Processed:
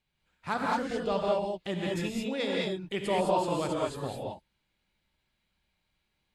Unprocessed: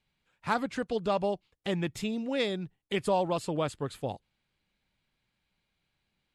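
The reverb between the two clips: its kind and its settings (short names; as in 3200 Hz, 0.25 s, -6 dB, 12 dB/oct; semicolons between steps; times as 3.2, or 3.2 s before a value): non-linear reverb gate 0.24 s rising, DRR -3 dB; gain -3.5 dB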